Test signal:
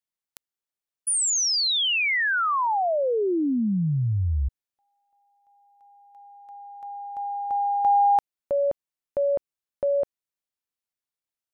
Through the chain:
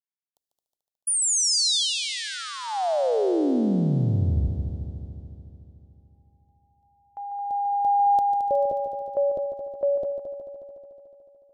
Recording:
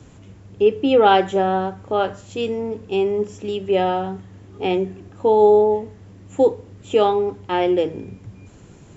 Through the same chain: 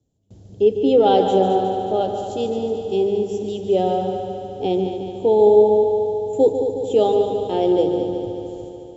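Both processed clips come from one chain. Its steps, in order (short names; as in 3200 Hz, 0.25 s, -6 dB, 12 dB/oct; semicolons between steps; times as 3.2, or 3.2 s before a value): band shelf 1600 Hz -15.5 dB; gate with hold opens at -33 dBFS, closes at -37 dBFS, hold 0.362 s, range -26 dB; on a send: multi-head echo 73 ms, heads second and third, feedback 68%, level -9 dB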